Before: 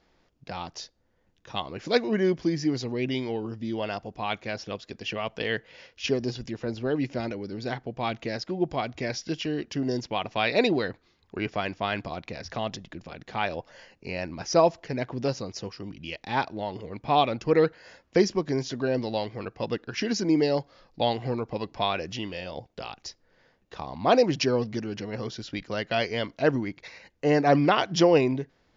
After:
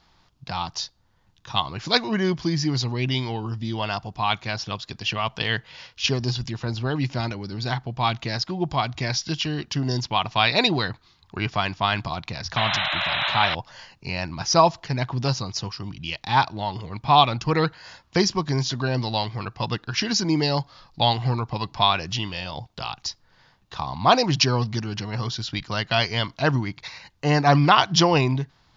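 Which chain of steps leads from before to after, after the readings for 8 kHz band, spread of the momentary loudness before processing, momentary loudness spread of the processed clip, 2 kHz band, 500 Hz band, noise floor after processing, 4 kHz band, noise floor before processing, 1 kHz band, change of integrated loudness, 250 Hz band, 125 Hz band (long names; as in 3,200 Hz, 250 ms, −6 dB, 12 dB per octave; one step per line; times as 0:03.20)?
can't be measured, 15 LU, 13 LU, +6.0 dB, −1.5 dB, −61 dBFS, +10.0 dB, −68 dBFS, +7.0 dB, +4.0 dB, +1.0 dB, +9.5 dB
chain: graphic EQ with 10 bands 125 Hz +6 dB, 250 Hz −5 dB, 500 Hz −11 dB, 1,000 Hz +7 dB, 2,000 Hz −4 dB, 4,000 Hz +6 dB
sound drawn into the spectrogram noise, 0:12.56–0:13.55, 560–4,100 Hz −31 dBFS
level +6 dB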